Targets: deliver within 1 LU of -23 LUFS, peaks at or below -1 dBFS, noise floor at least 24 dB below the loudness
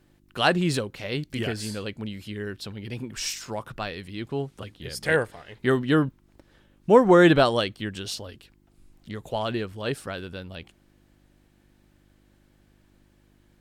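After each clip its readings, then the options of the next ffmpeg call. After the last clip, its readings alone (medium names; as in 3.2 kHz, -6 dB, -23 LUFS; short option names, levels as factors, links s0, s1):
hum 50 Hz; highest harmonic 350 Hz; hum level -45 dBFS; loudness -25.0 LUFS; peak level -3.5 dBFS; loudness target -23.0 LUFS
-> -af "bandreject=f=50:t=h:w=4,bandreject=f=100:t=h:w=4,bandreject=f=150:t=h:w=4,bandreject=f=200:t=h:w=4,bandreject=f=250:t=h:w=4,bandreject=f=300:t=h:w=4,bandreject=f=350:t=h:w=4"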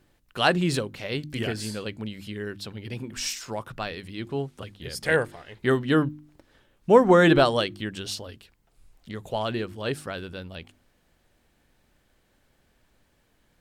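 hum not found; loudness -25.5 LUFS; peak level -4.0 dBFS; loudness target -23.0 LUFS
-> -af "volume=1.33"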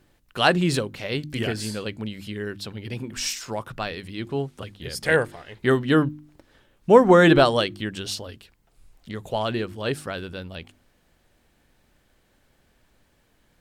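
loudness -23.0 LUFS; peak level -1.5 dBFS; noise floor -65 dBFS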